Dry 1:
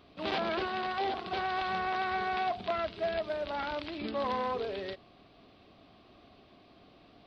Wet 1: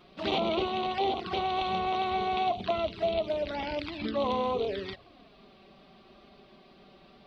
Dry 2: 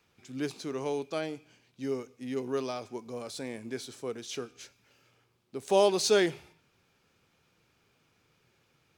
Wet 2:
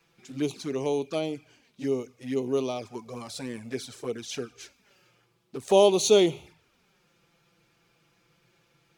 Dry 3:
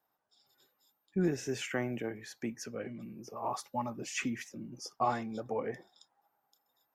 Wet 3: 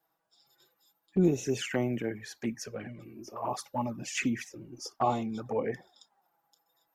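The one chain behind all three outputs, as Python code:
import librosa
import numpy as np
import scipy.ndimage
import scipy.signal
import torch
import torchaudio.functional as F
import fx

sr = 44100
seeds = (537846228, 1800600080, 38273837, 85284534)

y = fx.env_flanger(x, sr, rest_ms=6.2, full_db=-30.5)
y = y * librosa.db_to_amplitude(6.0)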